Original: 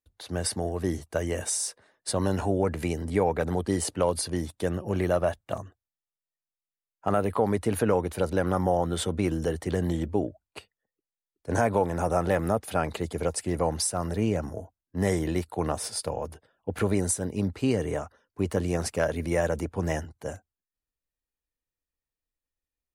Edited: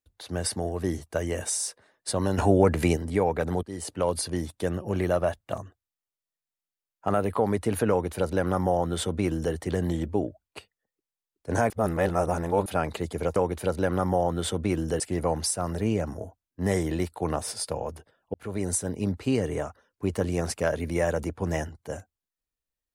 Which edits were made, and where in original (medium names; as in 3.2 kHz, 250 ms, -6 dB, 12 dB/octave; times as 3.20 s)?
2.38–2.97 s: gain +6 dB
3.63–4.12 s: fade in, from -17.5 dB
7.90–9.54 s: copy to 13.36 s
11.70–12.66 s: reverse
16.70–17.13 s: fade in